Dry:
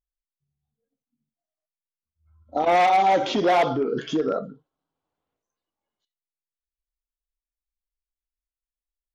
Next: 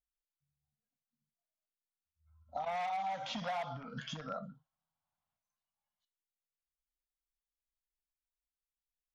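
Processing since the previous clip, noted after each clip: Chebyshev band-stop 190–720 Hz, order 2; compressor 5:1, threshold -29 dBFS, peak gain reduction 11 dB; gain -7 dB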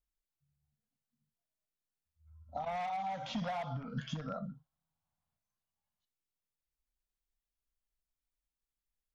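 low shelf 310 Hz +11.5 dB; gain -2.5 dB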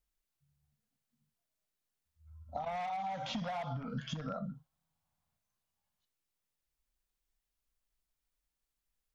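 compressor, threshold -39 dBFS, peak gain reduction 6.5 dB; gain +4 dB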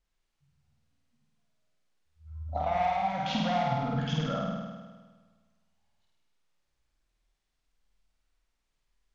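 air absorption 77 m; on a send: flutter echo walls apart 8.8 m, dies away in 1.4 s; on the sum: gain +6 dB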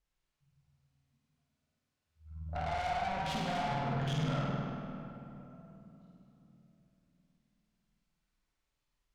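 tube stage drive 34 dB, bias 0.75; shoebox room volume 170 m³, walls hard, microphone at 0.34 m

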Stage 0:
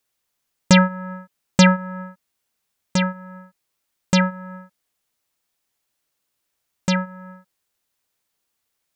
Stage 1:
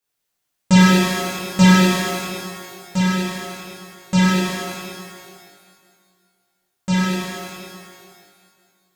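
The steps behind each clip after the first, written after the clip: reverb removal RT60 0.57 s; shimmer reverb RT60 2.1 s, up +12 st, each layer -8 dB, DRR -10.5 dB; gain -8.5 dB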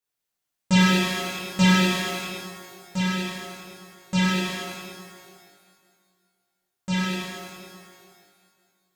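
dynamic EQ 2900 Hz, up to +6 dB, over -37 dBFS, Q 1.2; gain -7 dB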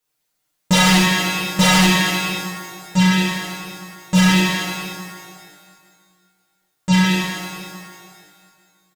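wavefolder -18.5 dBFS; comb 6.5 ms, depth 90%; gain +7.5 dB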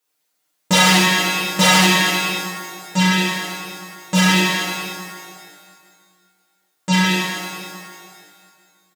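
HPF 220 Hz 12 dB/oct; gain +2 dB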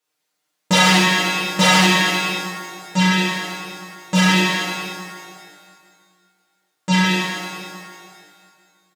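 high shelf 9600 Hz -10 dB

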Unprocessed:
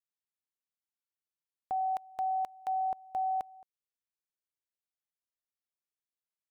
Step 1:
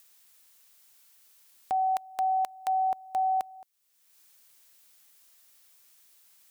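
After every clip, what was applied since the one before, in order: tilt +2.5 dB/oct; in parallel at 0 dB: upward compressor, threshold -39 dBFS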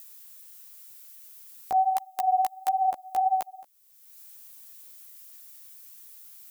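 high shelf 8600 Hz +12 dB; chorus voices 2, 1.4 Hz, delay 14 ms, depth 3 ms; gain +5.5 dB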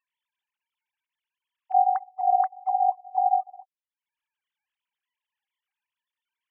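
sine-wave speech; gain +2 dB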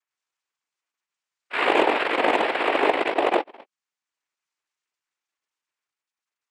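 added harmonics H 6 -28 dB, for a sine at -10 dBFS; echoes that change speed 99 ms, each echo +2 st, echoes 3; noise vocoder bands 4

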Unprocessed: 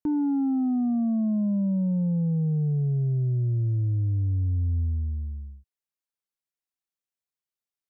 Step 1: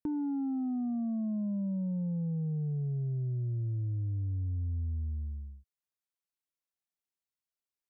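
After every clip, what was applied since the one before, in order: compressor, threshold -27 dBFS, peak gain reduction 4 dB; gain -4.5 dB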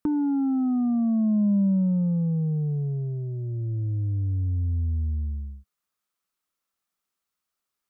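thirty-one-band EQ 125 Hz -7 dB, 200 Hz +4 dB, 1250 Hz +10 dB; gain +8.5 dB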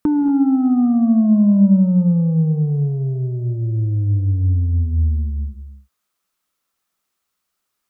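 non-linear reverb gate 0.26 s rising, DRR 9.5 dB; gain +8 dB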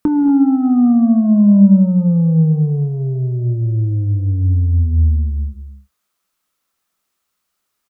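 doubler 25 ms -13 dB; gain +2.5 dB

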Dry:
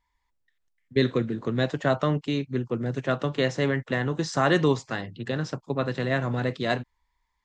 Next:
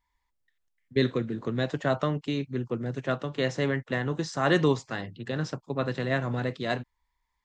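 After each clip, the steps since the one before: noise-modulated level, depth 55%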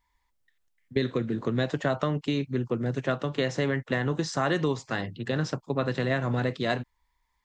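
compressor 6:1, threshold -26 dBFS, peak gain reduction 9 dB; gain +4 dB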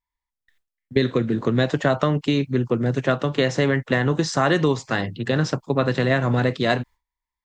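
gate with hold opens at -56 dBFS; gain +7 dB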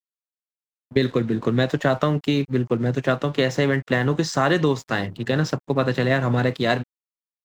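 crossover distortion -45 dBFS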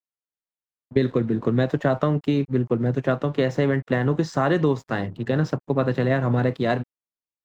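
high shelf 2000 Hz -11.5 dB

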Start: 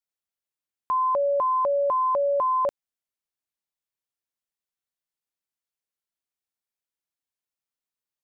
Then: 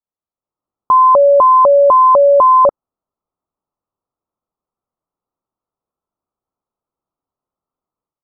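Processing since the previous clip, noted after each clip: Chebyshev low-pass 1300 Hz, order 6; AGC gain up to 11 dB; gain +4.5 dB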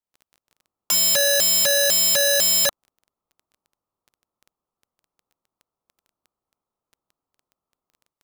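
wrapped overs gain 14.5 dB; crackle 11/s -39 dBFS

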